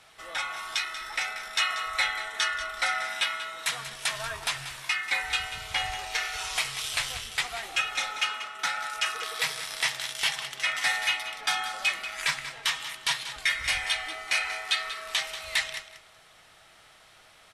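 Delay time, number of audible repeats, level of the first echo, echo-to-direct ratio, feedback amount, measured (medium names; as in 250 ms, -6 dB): 187 ms, 2, -12.0 dB, -12.0 dB, 19%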